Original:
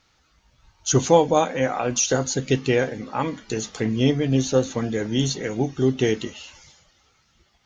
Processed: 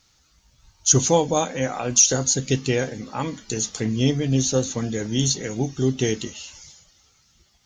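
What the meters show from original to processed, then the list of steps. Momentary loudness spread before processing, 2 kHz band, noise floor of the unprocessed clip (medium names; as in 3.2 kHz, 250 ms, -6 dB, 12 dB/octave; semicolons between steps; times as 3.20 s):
11 LU, -2.5 dB, -64 dBFS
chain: tone controls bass +5 dB, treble +13 dB; trim -3.5 dB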